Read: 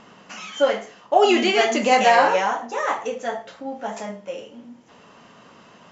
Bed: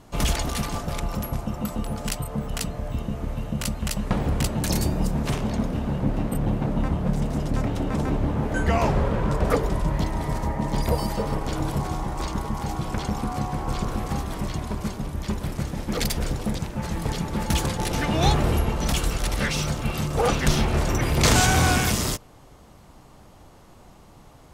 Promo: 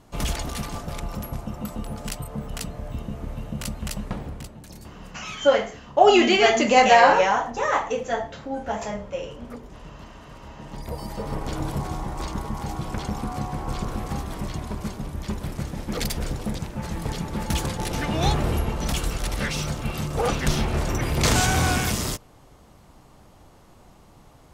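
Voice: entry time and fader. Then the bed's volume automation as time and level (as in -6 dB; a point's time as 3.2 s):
4.85 s, +1.0 dB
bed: 3.98 s -3.5 dB
4.67 s -19.5 dB
10.31 s -19.5 dB
11.41 s -2 dB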